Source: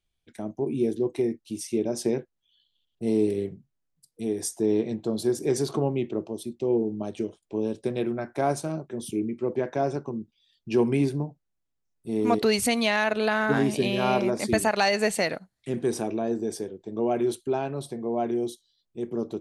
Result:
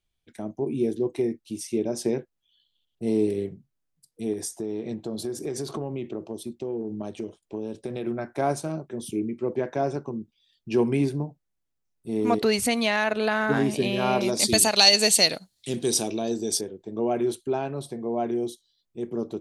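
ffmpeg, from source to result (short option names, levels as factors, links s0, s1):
-filter_complex "[0:a]asettb=1/sr,asplit=3[s0][s1][s2];[s0]atrim=end=4.334[s3];[s1]atrim=start=4.33:end=8.07,asetpts=PTS-STARTPTS,afade=t=in:d=0.004:c=qsin,afade=t=out:st=3.736:d=0.004:c=qsin,acompressor=threshold=0.0447:ratio=5:attack=3.2:release=140:knee=1:detection=peak[s4];[s2]atrim=start=8.066[s5];[s3][s4]acrossfade=d=0.004:c1=hsin:c2=qsin[s6];[s6][s5]acrossfade=d=0.004:c1=qsin:c2=hsin,asettb=1/sr,asplit=3[s7][s8][s9];[s7]atrim=end=14.214[s10];[s8]atrim=start=14.21:end=16.61,asetpts=PTS-STARTPTS,afade=t=in:d=0.004:c=qsin,afade=t=out:st=2.396:d=0.004:c=qsin,highshelf=f=2600:t=q:w=1.5:g=12.5[s11];[s9]atrim=start=16.606[s12];[s10][s11]acrossfade=d=0.004:c1=hsin:c2=qsin[s13];[s13][s12]acrossfade=d=0.004:c1=qsin:c2=hsin"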